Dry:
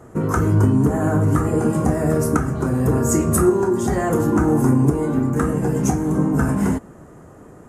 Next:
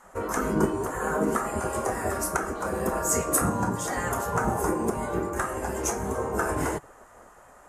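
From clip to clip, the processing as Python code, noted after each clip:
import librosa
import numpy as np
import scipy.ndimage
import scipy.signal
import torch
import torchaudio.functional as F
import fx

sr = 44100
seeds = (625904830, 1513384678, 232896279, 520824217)

y = fx.spec_gate(x, sr, threshold_db=-10, keep='weak')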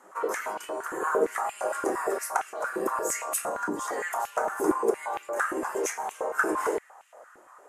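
y = fx.rider(x, sr, range_db=10, speed_s=2.0)
y = fx.filter_held_highpass(y, sr, hz=8.7, low_hz=320.0, high_hz=2700.0)
y = y * 10.0 ** (-5.0 / 20.0)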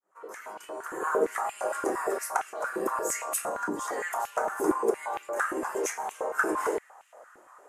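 y = fx.fade_in_head(x, sr, length_s=1.15)
y = y * 10.0 ** (-1.0 / 20.0)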